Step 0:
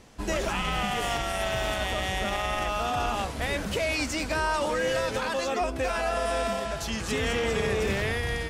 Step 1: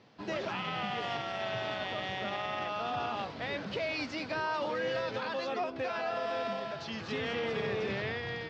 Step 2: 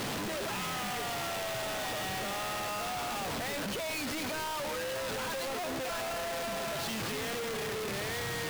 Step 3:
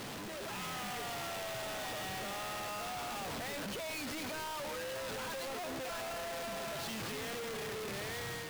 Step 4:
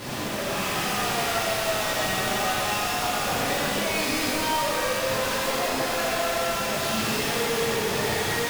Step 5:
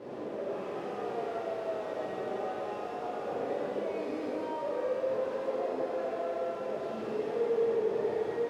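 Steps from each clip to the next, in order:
elliptic band-pass filter 110–4,600 Hz, stop band 40 dB; level −6 dB
sign of each sample alone
automatic gain control gain up to 3.5 dB; level −8.5 dB
reverb with rising layers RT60 2.2 s, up +12 semitones, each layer −8 dB, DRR −9.5 dB; level +4 dB
resonant band-pass 440 Hz, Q 2.6

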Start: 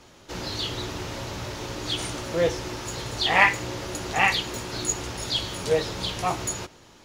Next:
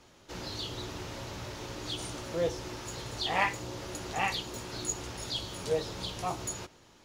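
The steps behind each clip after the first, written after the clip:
dynamic equaliser 2,000 Hz, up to −6 dB, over −39 dBFS, Q 1.3
level −7 dB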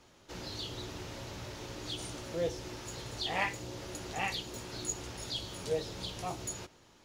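dynamic equaliser 1,100 Hz, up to −5 dB, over −48 dBFS, Q 1.5
level −2.5 dB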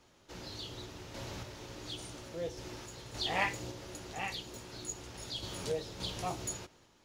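sample-and-hold tremolo
level +1.5 dB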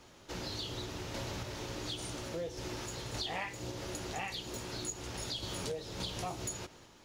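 downward compressor 6 to 1, threshold −43 dBFS, peak gain reduction 16 dB
level +7 dB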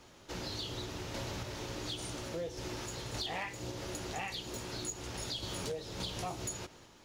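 gain into a clipping stage and back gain 30 dB

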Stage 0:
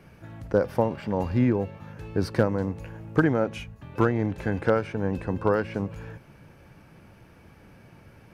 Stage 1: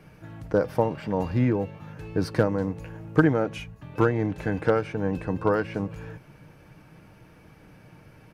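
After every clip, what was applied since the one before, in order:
comb filter 6.5 ms, depth 33%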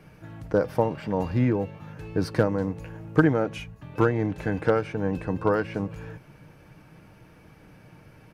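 no processing that can be heard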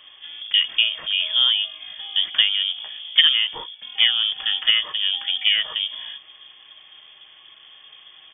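voice inversion scrambler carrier 3,400 Hz
level +3.5 dB

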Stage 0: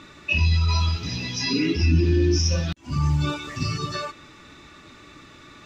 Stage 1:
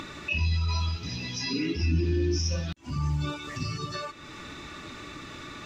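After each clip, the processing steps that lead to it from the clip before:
upward compression, threshold −23 dBFS
level −6.5 dB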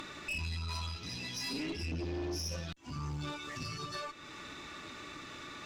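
low-shelf EQ 230 Hz −7.5 dB
tube saturation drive 31 dB, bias 0.45
level −2 dB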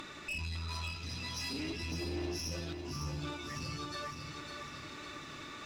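feedback echo at a low word length 555 ms, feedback 55%, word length 12 bits, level −6 dB
level −1.5 dB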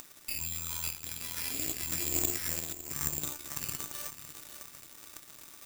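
harmonic generator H 3 −10 dB, 8 −36 dB, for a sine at −28 dBFS
bad sample-rate conversion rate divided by 6×, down none, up zero stuff
level +5 dB

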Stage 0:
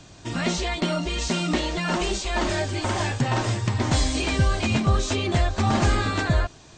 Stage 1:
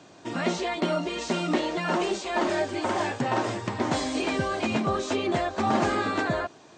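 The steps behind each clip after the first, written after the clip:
high-pass filter 270 Hz 12 dB per octave
high-shelf EQ 2,100 Hz −11 dB
level +2.5 dB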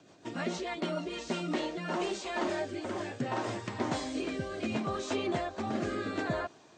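rotating-speaker cabinet horn 6.7 Hz, later 0.7 Hz, at 0:01.03
level −5 dB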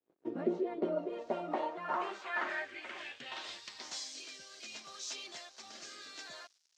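dead-zone distortion −54 dBFS
band-pass filter sweep 380 Hz → 5,500 Hz, 0:00.67–0:03.92
level +6.5 dB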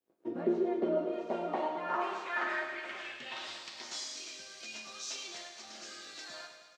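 repeating echo 106 ms, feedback 59%, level −10 dB
on a send at −3.5 dB: convolution reverb RT60 1.5 s, pre-delay 7 ms

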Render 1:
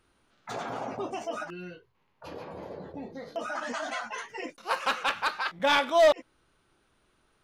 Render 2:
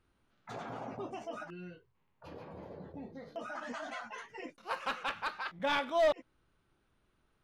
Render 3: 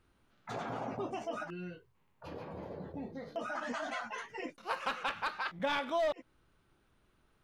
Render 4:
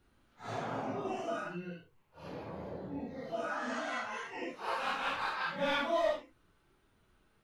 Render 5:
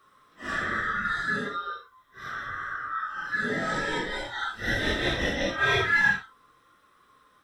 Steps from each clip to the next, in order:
bass and treble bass +6 dB, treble −5 dB; level −8 dB
downward compressor 4 to 1, threshold −34 dBFS, peak gain reduction 8.5 dB; level +3.5 dB
random phases in long frames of 200 ms; level +1.5 dB
neighbouring bands swapped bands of 1,000 Hz; level +8.5 dB

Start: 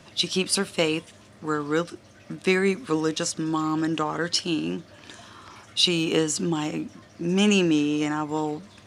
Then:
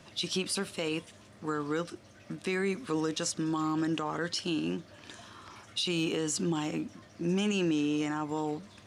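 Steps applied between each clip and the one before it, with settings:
brickwall limiter −18 dBFS, peak gain reduction 11.5 dB
level −4 dB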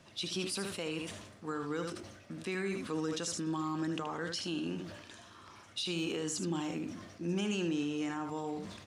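on a send: single-tap delay 76 ms −8.5 dB
on the sum: level that may fall only so fast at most 52 dB per second
level −5.5 dB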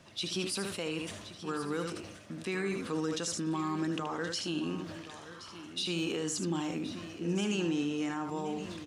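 single-tap delay 1,073 ms −13.5 dB
level +2 dB

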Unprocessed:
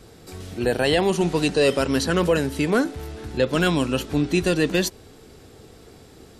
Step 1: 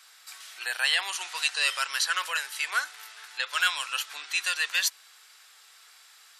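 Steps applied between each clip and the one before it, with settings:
high-pass filter 1,200 Hz 24 dB per octave
level +1.5 dB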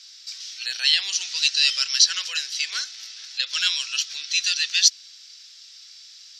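drawn EQ curve 200 Hz 0 dB, 960 Hz −19 dB, 5,600 Hz +14 dB, 9,400 Hz −15 dB
level +2.5 dB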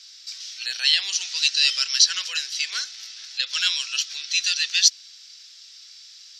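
Butterworth high-pass 250 Hz 36 dB per octave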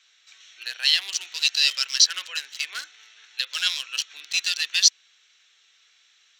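adaptive Wiener filter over 9 samples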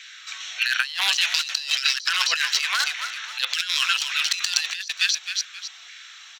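auto-filter high-pass saw down 1.7 Hz 660–1,900 Hz
echo with shifted repeats 265 ms, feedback 34%, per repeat −76 Hz, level −15.5 dB
compressor whose output falls as the input rises −33 dBFS, ratio −1
level +7.5 dB

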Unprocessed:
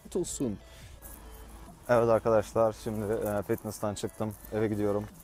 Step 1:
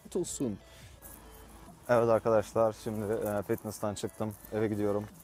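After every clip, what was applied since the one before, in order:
high-pass filter 67 Hz
level −1.5 dB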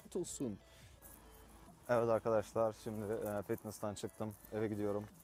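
upward compression, threshold −49 dBFS
level −8 dB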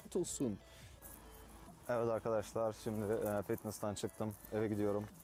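brickwall limiter −29.5 dBFS, peak gain reduction 8 dB
level +3 dB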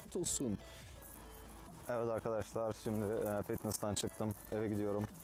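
output level in coarse steps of 16 dB
level +10.5 dB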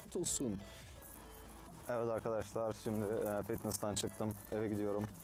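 mains-hum notches 50/100/150/200 Hz

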